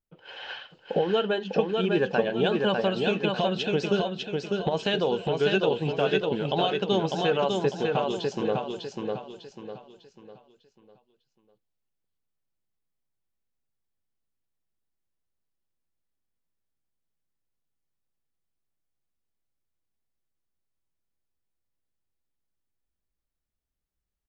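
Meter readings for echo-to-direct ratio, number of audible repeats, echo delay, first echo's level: −3.0 dB, 4, 600 ms, −3.5 dB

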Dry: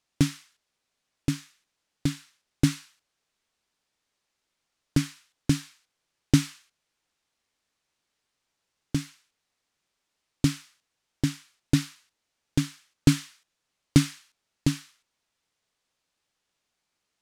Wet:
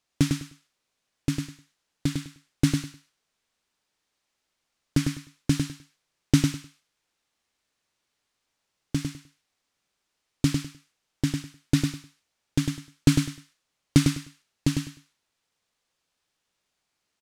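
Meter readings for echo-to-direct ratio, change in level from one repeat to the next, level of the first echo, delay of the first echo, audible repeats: −5.0 dB, −13.5 dB, −5.0 dB, 102 ms, 3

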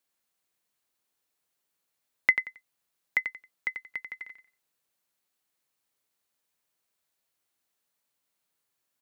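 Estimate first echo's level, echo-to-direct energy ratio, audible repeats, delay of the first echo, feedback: −8.0 dB, −8.0 dB, 3, 90 ms, 23%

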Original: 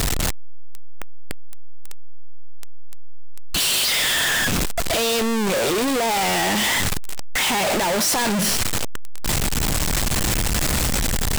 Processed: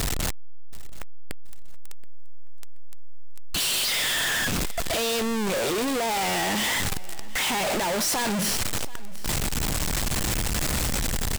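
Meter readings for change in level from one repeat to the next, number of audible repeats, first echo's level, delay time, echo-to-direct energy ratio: −10.0 dB, 2, −20.5 dB, 727 ms, −20.0 dB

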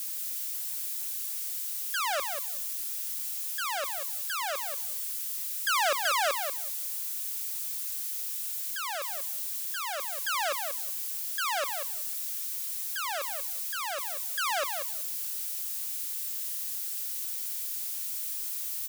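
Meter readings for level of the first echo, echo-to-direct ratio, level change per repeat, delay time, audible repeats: −7.0 dB, −7.0 dB, −16.5 dB, 188 ms, 2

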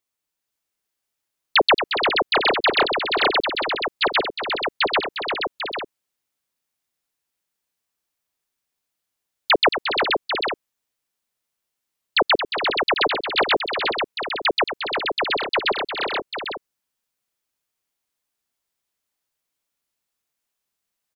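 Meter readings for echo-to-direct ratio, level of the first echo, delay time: −1.0 dB, −9.0 dB, 225 ms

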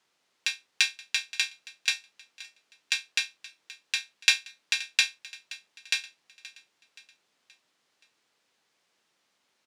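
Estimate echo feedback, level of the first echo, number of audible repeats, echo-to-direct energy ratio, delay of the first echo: 48%, −18.5 dB, 3, −17.5 dB, 525 ms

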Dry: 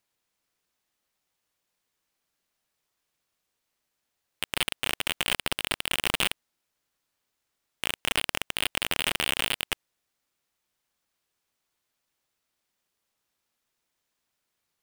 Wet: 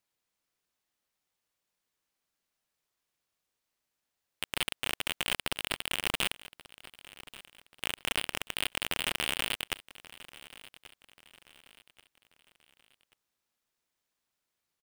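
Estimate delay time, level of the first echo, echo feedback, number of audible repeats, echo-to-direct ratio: 1,134 ms, −18.5 dB, 40%, 3, −18.0 dB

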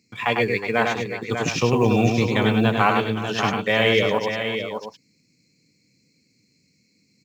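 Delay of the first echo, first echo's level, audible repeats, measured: 100 ms, −4.5 dB, 4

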